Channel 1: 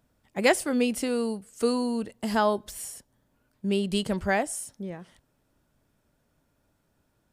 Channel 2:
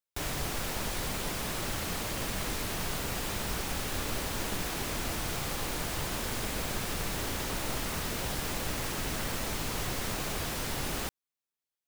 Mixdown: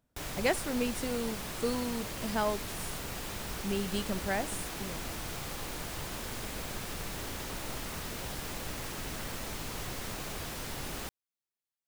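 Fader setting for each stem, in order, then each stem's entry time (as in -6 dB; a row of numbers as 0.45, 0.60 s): -7.5, -5.0 dB; 0.00, 0.00 s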